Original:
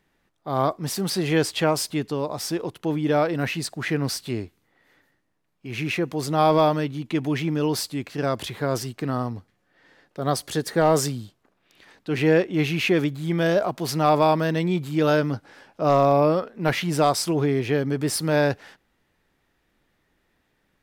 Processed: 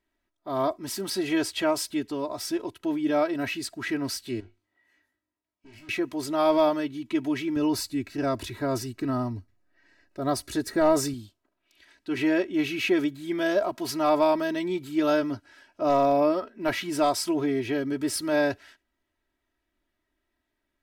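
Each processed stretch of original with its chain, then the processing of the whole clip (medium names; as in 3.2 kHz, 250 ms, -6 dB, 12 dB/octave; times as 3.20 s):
4.40–5.89 s: low-pass that closes with the level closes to 950 Hz, closed at -26 dBFS + valve stage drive 44 dB, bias 0.55 + flutter echo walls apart 3.4 m, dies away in 0.23 s
7.56–11.14 s: bass shelf 190 Hz +9 dB + band-stop 3.2 kHz, Q 10
whole clip: comb 3.1 ms, depth 84%; spectral noise reduction 7 dB; trim -6 dB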